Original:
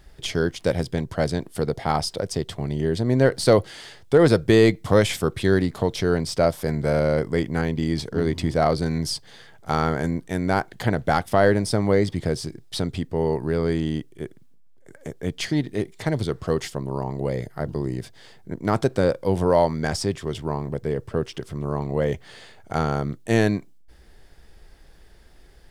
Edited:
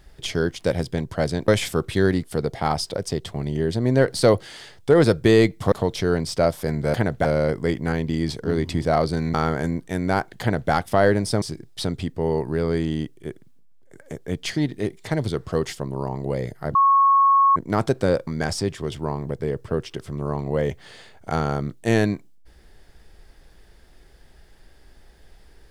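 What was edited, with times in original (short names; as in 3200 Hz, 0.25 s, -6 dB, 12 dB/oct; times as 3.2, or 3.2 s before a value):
4.96–5.72 move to 1.48
9.03–9.74 cut
10.81–11.12 copy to 6.94
11.82–12.37 cut
17.7–18.51 bleep 1100 Hz -12.5 dBFS
19.22–19.7 cut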